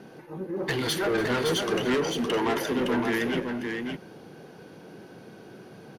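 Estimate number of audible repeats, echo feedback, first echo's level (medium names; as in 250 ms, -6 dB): 2, no regular repeats, -17.5 dB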